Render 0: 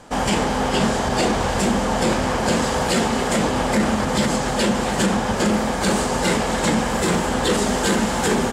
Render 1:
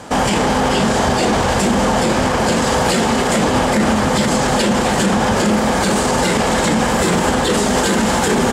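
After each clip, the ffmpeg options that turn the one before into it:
ffmpeg -i in.wav -af "highpass=50,alimiter=level_in=16.5dB:limit=-1dB:release=50:level=0:latency=1,volume=-6dB" out.wav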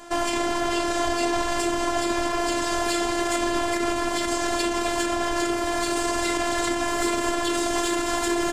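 ffmpeg -i in.wav -af "aeval=exprs='0.473*(cos(1*acos(clip(val(0)/0.473,-1,1)))-cos(1*PI/2))+0.0473*(cos(2*acos(clip(val(0)/0.473,-1,1)))-cos(2*PI/2))':channel_layout=same,afftfilt=real='hypot(re,im)*cos(PI*b)':imag='0':win_size=512:overlap=0.75,volume=-4.5dB" out.wav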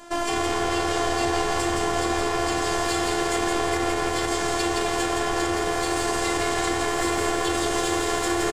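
ffmpeg -i in.wav -filter_complex "[0:a]asplit=6[link_01][link_02][link_03][link_04][link_05][link_06];[link_02]adelay=168,afreqshift=80,volume=-3.5dB[link_07];[link_03]adelay=336,afreqshift=160,volume=-12.6dB[link_08];[link_04]adelay=504,afreqshift=240,volume=-21.7dB[link_09];[link_05]adelay=672,afreqshift=320,volume=-30.9dB[link_10];[link_06]adelay=840,afreqshift=400,volume=-40dB[link_11];[link_01][link_07][link_08][link_09][link_10][link_11]amix=inputs=6:normalize=0,volume=-1.5dB" out.wav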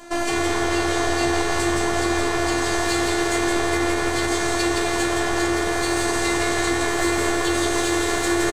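ffmpeg -i in.wav -filter_complex "[0:a]asplit=2[link_01][link_02];[link_02]adelay=15,volume=-5dB[link_03];[link_01][link_03]amix=inputs=2:normalize=0,volume=2dB" out.wav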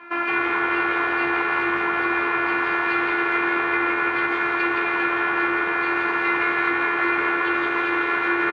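ffmpeg -i in.wav -af "highpass=230,equalizer=frequency=260:width_type=q:width=4:gain=-5,equalizer=frequency=410:width_type=q:width=4:gain=-4,equalizer=frequency=670:width_type=q:width=4:gain=-10,equalizer=frequency=950:width_type=q:width=4:gain=5,equalizer=frequency=1400:width_type=q:width=4:gain=10,equalizer=frequency=2400:width_type=q:width=4:gain=10,lowpass=frequency=2600:width=0.5412,lowpass=frequency=2600:width=1.3066,volume=-1dB" out.wav

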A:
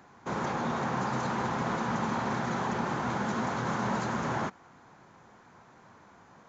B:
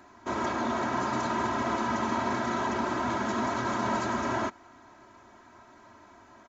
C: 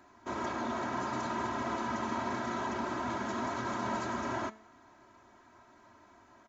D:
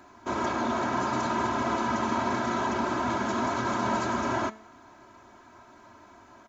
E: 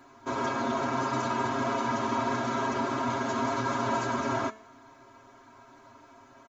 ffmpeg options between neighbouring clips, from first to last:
ffmpeg -i in.wav -af "aecho=1:1:3.1:0.88" out.wav
ffmpeg -i in.wav -af "bandreject=frequency=217.7:width_type=h:width=4,bandreject=frequency=435.4:width_type=h:width=4,bandreject=frequency=653.1:width_type=h:width=4,bandreject=frequency=870.8:width_type=h:width=4,bandreject=frequency=1088.5:width_type=h:width=4,bandreject=frequency=1306.2:width_type=h:width=4,bandreject=frequency=1523.9:width_type=h:width=4,bandreject=frequency=1741.6:width_type=h:width=4,bandreject=frequency=1959.3:width_type=h:width=4,bandreject=frequency=2177:width_type=h:width=4,bandreject=frequency=2394.7:width_type=h:width=4,bandreject=frequency=2612.4:width_type=h:width=4,bandreject=frequency=2830.1:width_type=h:width=4,bandreject=frequency=3047.8:width_type=h:width=4,bandreject=frequency=3265.5:width_type=h:width=4,bandreject=frequency=3483.2:width_type=h:width=4,bandreject=frequency=3700.9:width_type=h:width=4,bandreject=frequency=3918.6:width_type=h:width=4,bandreject=frequency=4136.3:width_type=h:width=4,bandreject=frequency=4354:width_type=h:width=4,bandreject=frequency=4571.7:width_type=h:width=4,bandreject=frequency=4789.4:width_type=h:width=4,bandreject=frequency=5007.1:width_type=h:width=4,bandreject=frequency=5224.8:width_type=h:width=4,bandreject=frequency=5442.5:width_type=h:width=4,bandreject=frequency=5660.2:width_type=h:width=4,bandreject=frequency=5877.9:width_type=h:width=4,bandreject=frequency=6095.6:width_type=h:width=4,bandreject=frequency=6313.3:width_type=h:width=4,bandreject=frequency=6531:width_type=h:width=4,bandreject=frequency=6748.7:width_type=h:width=4,bandreject=frequency=6966.4:width_type=h:width=4,bandreject=frequency=7184.1:width_type=h:width=4,bandreject=frequency=7401.8:width_type=h:width=4,volume=-5.5dB" out.wav
ffmpeg -i in.wav -af "bandreject=frequency=1900:width=19,volume=7dB" out.wav
ffmpeg -i in.wav -af "aecho=1:1:7.4:0.84,volume=-3.5dB" out.wav

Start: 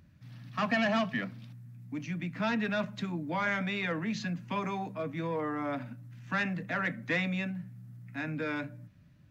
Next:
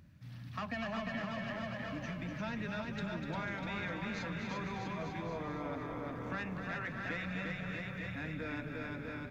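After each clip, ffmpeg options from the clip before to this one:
ffmpeg -i in.wav -filter_complex "[0:a]asplit=2[link_01][link_02];[link_02]aecho=0:1:350|647.5|900.4|1115|1298:0.631|0.398|0.251|0.158|0.1[link_03];[link_01][link_03]amix=inputs=2:normalize=0,acompressor=threshold=-42dB:ratio=2.5,asplit=2[link_04][link_05];[link_05]asplit=8[link_06][link_07][link_08][link_09][link_10][link_11][link_12][link_13];[link_06]adelay=247,afreqshift=-34,volume=-7.5dB[link_14];[link_07]adelay=494,afreqshift=-68,volume=-11.7dB[link_15];[link_08]adelay=741,afreqshift=-102,volume=-15.8dB[link_16];[link_09]adelay=988,afreqshift=-136,volume=-20dB[link_17];[link_10]adelay=1235,afreqshift=-170,volume=-24.1dB[link_18];[link_11]adelay=1482,afreqshift=-204,volume=-28.3dB[link_19];[link_12]adelay=1729,afreqshift=-238,volume=-32.4dB[link_20];[link_13]adelay=1976,afreqshift=-272,volume=-36.6dB[link_21];[link_14][link_15][link_16][link_17][link_18][link_19][link_20][link_21]amix=inputs=8:normalize=0[link_22];[link_04][link_22]amix=inputs=2:normalize=0" out.wav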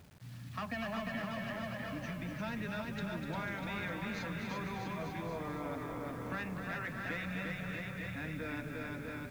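ffmpeg -i in.wav -af "acrusher=bits=9:mix=0:aa=0.000001" out.wav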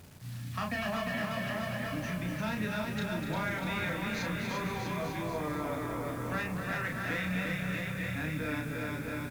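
ffmpeg -i in.wav -filter_complex "[0:a]equalizer=frequency=11000:width=0.49:gain=6,asplit=2[link_01][link_02];[link_02]adelay=33,volume=-4dB[link_03];[link_01][link_03]amix=inputs=2:normalize=0,volume=3.5dB" out.wav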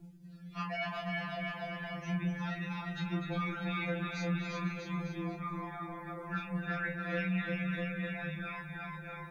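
ffmpeg -i in.wav -af "afftdn=noise_reduction=21:noise_floor=-51,areverse,acompressor=mode=upward:threshold=-38dB:ratio=2.5,areverse,afftfilt=real='re*2.83*eq(mod(b,8),0)':imag='im*2.83*eq(mod(b,8),0)':win_size=2048:overlap=0.75,volume=-1dB" out.wav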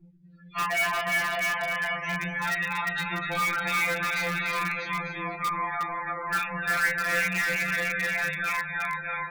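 ffmpeg -i in.wav -filter_complex "[0:a]afftdn=noise_reduction=25:noise_floor=-54,equalizer=frequency=250:width_type=o:width=1:gain=-11,equalizer=frequency=500:width_type=o:width=1:gain=3,equalizer=frequency=1000:width_type=o:width=1:gain=9,equalizer=frequency=2000:width_type=o:width=1:gain=12,equalizer=frequency=4000:width_type=o:width=1:gain=5,asplit=2[link_01][link_02];[link_02]aeval=exprs='(mod(15.8*val(0)+1,2)-1)/15.8':channel_layout=same,volume=-8dB[link_03];[link_01][link_03]amix=inputs=2:normalize=0" out.wav

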